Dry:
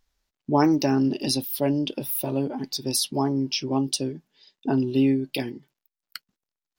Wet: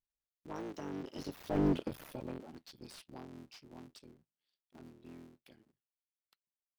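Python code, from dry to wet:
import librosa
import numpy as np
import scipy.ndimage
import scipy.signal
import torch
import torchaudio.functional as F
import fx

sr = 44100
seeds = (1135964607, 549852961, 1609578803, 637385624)

y = fx.cycle_switch(x, sr, every=3, mode='muted')
y = fx.doppler_pass(y, sr, speed_mps=23, closest_m=1.6, pass_at_s=1.68)
y = fx.slew_limit(y, sr, full_power_hz=13.0)
y = y * librosa.db_to_amplitude(2.5)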